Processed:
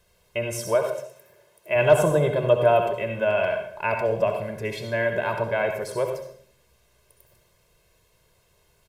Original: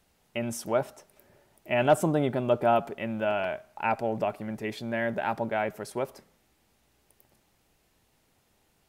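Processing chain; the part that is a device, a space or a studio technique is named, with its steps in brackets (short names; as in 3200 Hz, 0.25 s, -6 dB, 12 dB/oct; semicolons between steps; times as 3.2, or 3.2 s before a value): microphone above a desk (comb 1.9 ms, depth 86%; reverb RT60 0.55 s, pre-delay 60 ms, DRR 4.5 dB); 0.75–1.76 HPF 310 Hz 6 dB/oct; gain +1.5 dB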